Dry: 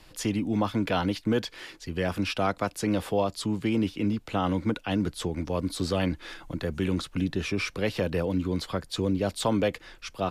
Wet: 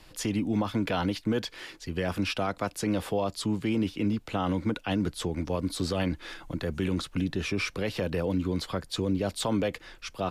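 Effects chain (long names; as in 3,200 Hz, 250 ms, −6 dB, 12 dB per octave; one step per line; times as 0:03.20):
brickwall limiter −18.5 dBFS, peak gain reduction 5 dB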